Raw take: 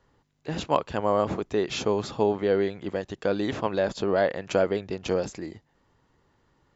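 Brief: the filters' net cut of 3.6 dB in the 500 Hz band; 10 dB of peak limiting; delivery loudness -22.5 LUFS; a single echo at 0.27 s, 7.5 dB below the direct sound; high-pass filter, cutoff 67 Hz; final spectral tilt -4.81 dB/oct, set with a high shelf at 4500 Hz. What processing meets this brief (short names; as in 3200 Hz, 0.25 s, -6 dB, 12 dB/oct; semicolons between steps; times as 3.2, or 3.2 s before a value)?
HPF 67 Hz; bell 500 Hz -4.5 dB; high shelf 4500 Hz +3 dB; limiter -17 dBFS; echo 0.27 s -7.5 dB; gain +8.5 dB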